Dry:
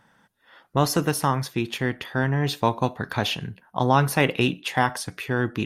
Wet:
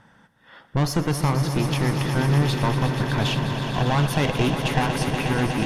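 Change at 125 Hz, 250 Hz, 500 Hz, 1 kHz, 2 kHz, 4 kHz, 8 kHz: +5.0, +2.5, -0.5, -2.0, -1.0, +1.0, -1.0 dB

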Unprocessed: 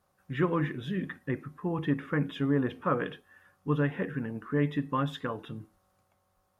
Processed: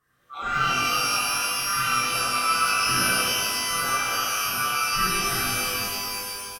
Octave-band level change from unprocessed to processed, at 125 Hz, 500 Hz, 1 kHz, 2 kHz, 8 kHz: -6.5 dB, -3.0 dB, +13.5 dB, +14.5 dB, n/a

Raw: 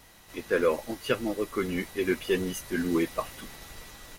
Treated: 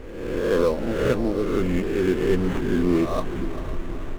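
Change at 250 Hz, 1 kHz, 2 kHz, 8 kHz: +7.5, +4.5, +0.5, -3.5 dB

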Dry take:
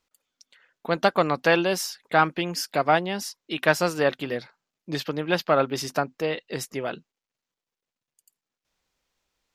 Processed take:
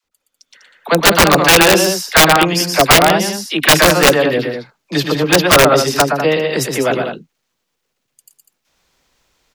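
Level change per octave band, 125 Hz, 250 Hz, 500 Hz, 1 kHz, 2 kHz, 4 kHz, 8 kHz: +13.5, +12.5, +11.5, +11.5, +14.0, +18.5, +20.0 dB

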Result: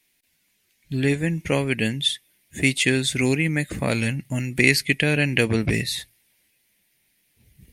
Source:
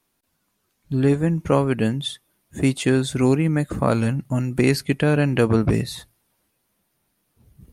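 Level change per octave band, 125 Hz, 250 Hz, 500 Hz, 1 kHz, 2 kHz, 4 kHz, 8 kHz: -3.5, -3.5, -4.0, -7.5, +7.5, +7.0, +5.5 dB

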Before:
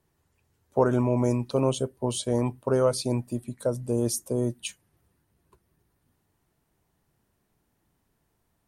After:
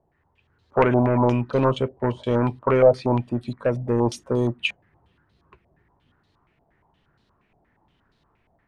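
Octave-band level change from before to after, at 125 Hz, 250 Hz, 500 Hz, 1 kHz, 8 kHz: +4.0, +4.0, +5.5, +8.5, -12.5 dB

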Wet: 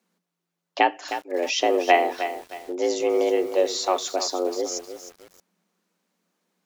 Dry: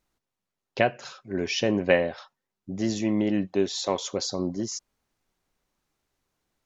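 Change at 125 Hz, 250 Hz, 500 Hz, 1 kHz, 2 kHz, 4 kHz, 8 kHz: under -25 dB, -4.0 dB, +4.5 dB, +11.0 dB, +3.0 dB, +3.5 dB, n/a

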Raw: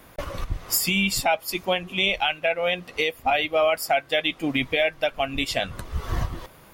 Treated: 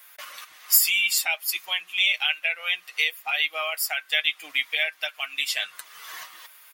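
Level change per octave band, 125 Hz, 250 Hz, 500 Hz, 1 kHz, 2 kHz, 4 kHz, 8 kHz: under -40 dB, under -30 dB, -16.5 dB, -11.0 dB, +1.5 dB, +2.0 dB, +4.0 dB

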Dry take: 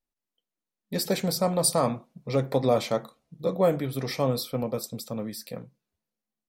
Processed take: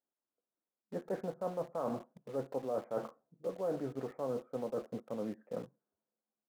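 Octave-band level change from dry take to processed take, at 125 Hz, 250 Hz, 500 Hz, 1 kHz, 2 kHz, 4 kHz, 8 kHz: -18.0 dB, -12.0 dB, -10.5 dB, -12.5 dB, -16.5 dB, under -25 dB, under -30 dB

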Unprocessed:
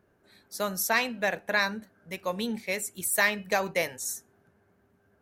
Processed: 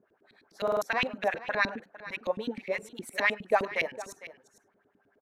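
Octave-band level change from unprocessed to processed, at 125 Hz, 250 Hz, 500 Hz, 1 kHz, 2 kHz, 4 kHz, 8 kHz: -5.0, -4.0, +1.0, -0.5, -2.5, -5.0, -17.0 dB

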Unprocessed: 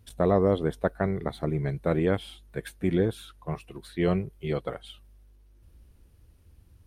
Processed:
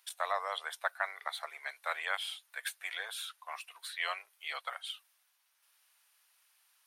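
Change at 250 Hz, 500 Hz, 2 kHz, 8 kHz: under -40 dB, -18.5 dB, +3.5 dB, +5.5 dB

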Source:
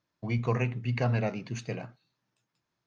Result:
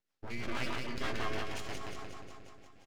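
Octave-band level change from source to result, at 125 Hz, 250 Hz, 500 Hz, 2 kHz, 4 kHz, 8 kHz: -17.0 dB, -8.5 dB, -8.0 dB, -1.0 dB, +5.0 dB, n/a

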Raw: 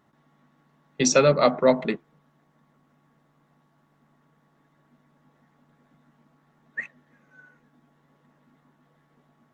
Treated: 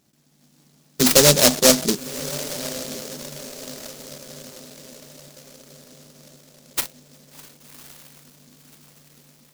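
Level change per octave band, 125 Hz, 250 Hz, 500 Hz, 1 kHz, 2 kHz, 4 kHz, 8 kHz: +4.5, +4.0, +1.0, -1.0, +4.0, +13.0, +12.5 dB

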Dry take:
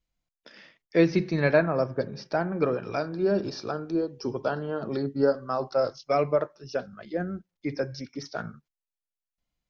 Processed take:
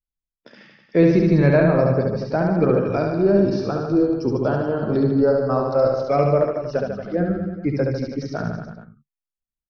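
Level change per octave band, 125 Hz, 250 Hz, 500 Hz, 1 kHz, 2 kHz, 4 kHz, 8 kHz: +12.0 dB, +9.5 dB, +7.5 dB, +5.5 dB, +2.5 dB, 0.0 dB, n/a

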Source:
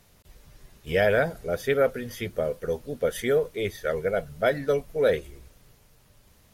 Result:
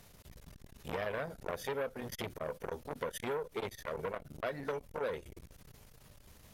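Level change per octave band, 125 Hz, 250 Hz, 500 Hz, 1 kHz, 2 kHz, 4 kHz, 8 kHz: -12.5, -12.0, -14.5, -7.5, -13.0, -10.0, -7.5 dB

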